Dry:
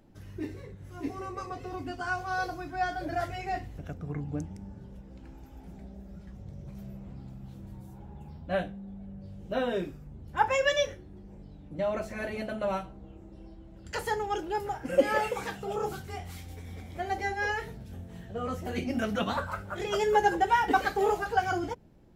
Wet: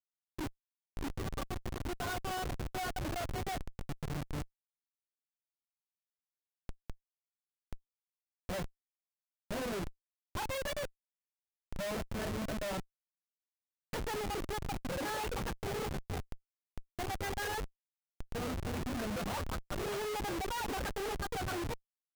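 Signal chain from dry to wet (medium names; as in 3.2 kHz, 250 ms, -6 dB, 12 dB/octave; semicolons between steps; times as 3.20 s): short-mantissa float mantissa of 6-bit; reverb removal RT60 0.65 s; Schmitt trigger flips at -35 dBFS; trim -3 dB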